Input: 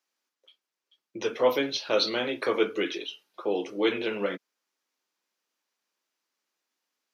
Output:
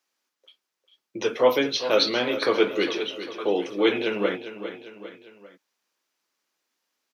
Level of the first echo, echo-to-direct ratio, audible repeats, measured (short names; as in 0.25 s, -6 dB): -11.5 dB, -10.5 dB, 3